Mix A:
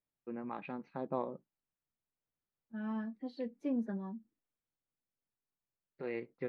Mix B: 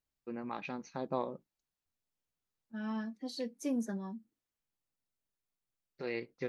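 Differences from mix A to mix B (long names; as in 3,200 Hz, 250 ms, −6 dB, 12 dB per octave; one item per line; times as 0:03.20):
first voice: remove band-pass filter 110–5,700 Hz
master: remove high-frequency loss of the air 430 metres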